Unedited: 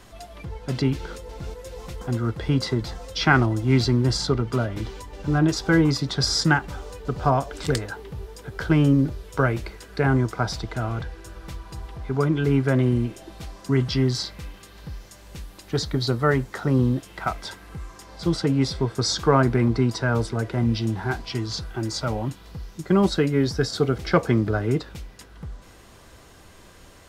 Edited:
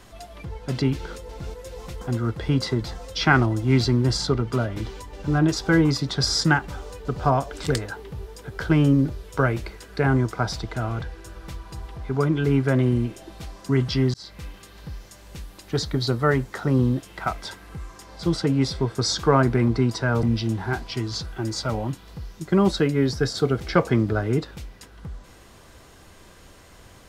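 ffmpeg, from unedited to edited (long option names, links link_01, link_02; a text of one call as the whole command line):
ffmpeg -i in.wav -filter_complex "[0:a]asplit=3[link_01][link_02][link_03];[link_01]atrim=end=14.14,asetpts=PTS-STARTPTS,afade=type=out:start_time=14.136:duration=0.004:curve=hsin[link_04];[link_02]atrim=start=14.14:end=20.232,asetpts=PTS-STARTPTS,afade=type=in:duration=0.29[link_05];[link_03]atrim=start=20.608[link_06];[link_04][link_05]concat=n=2:v=0:a=1[link_07];[link_07][link_06]acrossfade=duration=0.004:curve1=hsin:curve2=hsin" out.wav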